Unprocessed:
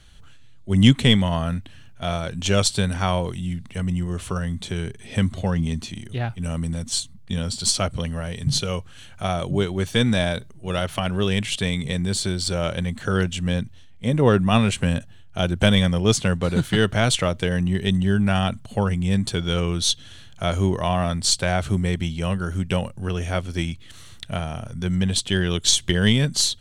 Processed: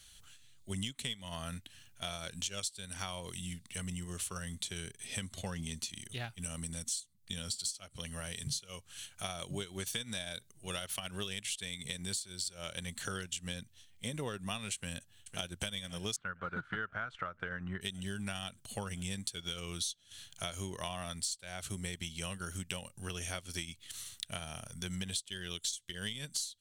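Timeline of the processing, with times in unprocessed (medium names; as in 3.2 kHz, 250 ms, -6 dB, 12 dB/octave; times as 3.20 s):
14.75–15.54 s: echo throw 510 ms, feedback 75%, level -14.5 dB
16.16–17.81 s: resonant low-pass 1.4 kHz, resonance Q 5.8
whole clip: pre-emphasis filter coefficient 0.9; compression 20:1, threshold -39 dBFS; transient shaper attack 0 dB, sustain -7 dB; trim +4.5 dB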